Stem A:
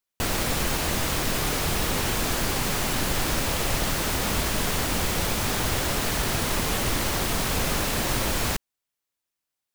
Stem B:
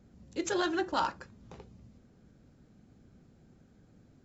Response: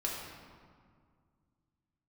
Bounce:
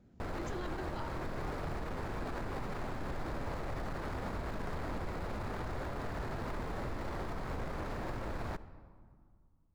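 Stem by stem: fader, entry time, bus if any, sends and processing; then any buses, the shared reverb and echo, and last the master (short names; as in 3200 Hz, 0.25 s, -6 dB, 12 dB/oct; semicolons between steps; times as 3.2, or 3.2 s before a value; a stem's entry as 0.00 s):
-6.0 dB, 0.00 s, send -19.5 dB, median filter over 15 samples; bell 210 Hz -2.5 dB 1.4 oct
-9.5 dB, 0.00 s, send -8.5 dB, vocal rider within 5 dB 0.5 s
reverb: on, RT60 2.0 s, pre-delay 3 ms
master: high shelf 5600 Hz -10.5 dB; limiter -30.5 dBFS, peak gain reduction 10 dB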